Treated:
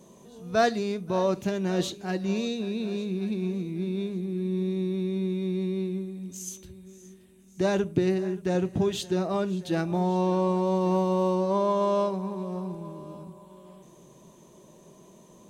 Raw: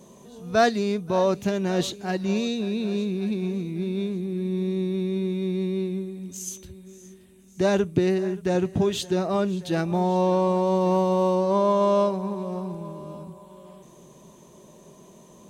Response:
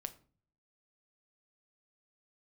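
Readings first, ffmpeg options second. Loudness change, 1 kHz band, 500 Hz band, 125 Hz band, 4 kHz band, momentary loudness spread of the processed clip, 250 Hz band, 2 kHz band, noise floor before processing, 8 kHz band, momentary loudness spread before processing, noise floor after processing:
-3.0 dB, -3.5 dB, -3.5 dB, -2.0 dB, -3.5 dB, 12 LU, -2.5 dB, -3.5 dB, -51 dBFS, -3.5 dB, 12 LU, -54 dBFS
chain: -filter_complex "[0:a]equalizer=f=320:t=o:w=0.41:g=2,asplit=2[s0][s1];[1:a]atrim=start_sample=2205[s2];[s1][s2]afir=irnorm=-1:irlink=0,volume=1.12[s3];[s0][s3]amix=inputs=2:normalize=0,volume=0.376"

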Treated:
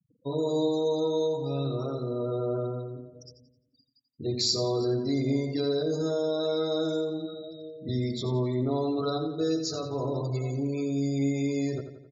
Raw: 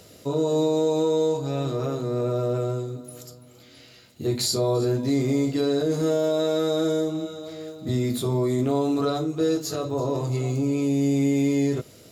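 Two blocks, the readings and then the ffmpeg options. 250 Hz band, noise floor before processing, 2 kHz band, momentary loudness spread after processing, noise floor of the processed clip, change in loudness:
-5.5 dB, -50 dBFS, -6.5 dB, 8 LU, -71 dBFS, -4.5 dB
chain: -filter_complex "[0:a]highshelf=f=8000:t=q:w=3:g=-14,afftfilt=real='re*gte(hypot(re,im),0.0224)':imag='im*gte(hypot(re,im),0.0224)':win_size=1024:overlap=0.75,asplit=2[s0][s1];[s1]adelay=87,lowpass=f=5000:p=1,volume=0.355,asplit=2[s2][s3];[s3]adelay=87,lowpass=f=5000:p=1,volume=0.53,asplit=2[s4][s5];[s5]adelay=87,lowpass=f=5000:p=1,volume=0.53,asplit=2[s6][s7];[s7]adelay=87,lowpass=f=5000:p=1,volume=0.53,asplit=2[s8][s9];[s9]adelay=87,lowpass=f=5000:p=1,volume=0.53,asplit=2[s10][s11];[s11]adelay=87,lowpass=f=5000:p=1,volume=0.53[s12];[s0][s2][s4][s6][s8][s10][s12]amix=inputs=7:normalize=0,volume=0.531"

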